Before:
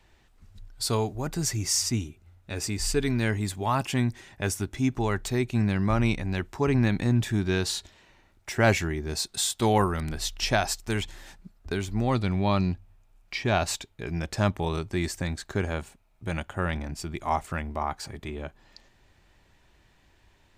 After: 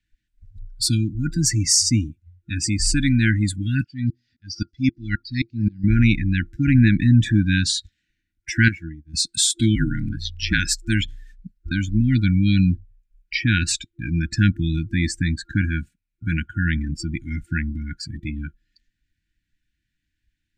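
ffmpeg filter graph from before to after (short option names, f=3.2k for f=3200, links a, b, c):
-filter_complex "[0:a]asettb=1/sr,asplit=3[a][b][c];[a]atrim=end=3.844[d];[b]atrim=start=3.84:end=5.84,asetpts=PTS-STARTPTS,afade=t=in:d=0.004:c=qsin,afade=t=out:st=1.996:d=0.004:c=qsin,lowpass=f=4.8k:t=q:w=9.2,asplit=2[e][f];[f]adelay=176,lowpass=f=3.6k:p=1,volume=-24dB,asplit=2[g][h];[h]adelay=176,lowpass=f=3.6k:p=1,volume=0.41,asplit=2[i][j];[j]adelay=176,lowpass=f=3.6k:p=1,volume=0.41[k];[e][g][i][k]amix=inputs=4:normalize=0,atrim=end_sample=88200,aeval=exprs='val(0)*pow(10,-30*if(lt(mod(-3.8*n/s,1),2*abs(-3.8)/1000),1-mod(-3.8*n/s,1)/(2*abs(-3.8)/1000),(mod(-3.8*n/s,1)-2*abs(-3.8)/1000)/(1-2*abs(-3.8)/1000))/20)':c=same[l];[c]atrim=start=5.836[m];[d][l]acrossfade=d=0.004:c1=hsin:c2=qsin[n];[n][m]acrossfade=d=0.004:c1=qsin:c2=hsin,asettb=1/sr,asplit=3[o][p][q];[o]atrim=end=8.684[r];[p]atrim=start=8.68:end=9.14,asetpts=PTS-STARTPTS,afade=t=in:d=0.004:c=qsin,afade=t=out:st=0.456:d=0.004:c=qsin,agate=range=-33dB:threshold=-21dB:ratio=3:release=100:detection=peak,acompressor=threshold=-33dB:ratio=4:attack=3.2:release=140:knee=1:detection=peak[s];[q]atrim=start=9.136[t];[r][s]acrossfade=d=0.004:c1=hsin:c2=qsin[u];[u][t]acrossfade=d=0.004:c1=qsin:c2=hsin,asettb=1/sr,asplit=3[v][w][x];[v]atrim=end=9.754[y];[w]atrim=start=9.75:end=10.59,asetpts=PTS-STARTPTS,afade=t=in:d=0.004:c=qsin,afade=t=out:st=0.836:d=0.004:c=qsin,aeval=exprs='val(0)*sin(2*PI*56*n/s)':c=same,acrusher=bits=9:mode=log:mix=0:aa=0.000001,acrossover=split=5000[z][aa];[aa]acompressor=threshold=-47dB:ratio=4:attack=1:release=60[ab];[z][ab]amix=inputs=2:normalize=0[ac];[x]atrim=start=10.586[ad];[y][ac]acrossfade=d=0.004:c1=hsin:c2=qsin[ae];[ae][ad]acrossfade=d=0.004:c1=qsin:c2=hsin,afftdn=nr=25:nf=-37,afftfilt=real='re*(1-between(b*sr/4096,340,1400))':imag='im*(1-between(b*sr/4096,340,1400))':win_size=4096:overlap=0.75,volume=9dB"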